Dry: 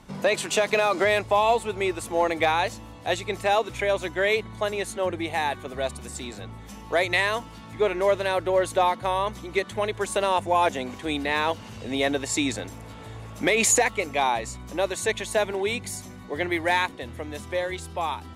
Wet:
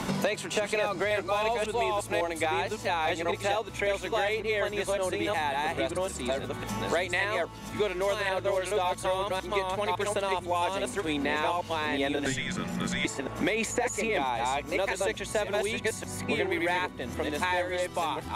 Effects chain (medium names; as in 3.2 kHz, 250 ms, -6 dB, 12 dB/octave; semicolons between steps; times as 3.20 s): chunks repeated in reverse 553 ms, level -1.5 dB; 12.26–13.05 s: frequency shift -290 Hz; three bands compressed up and down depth 100%; trim -7 dB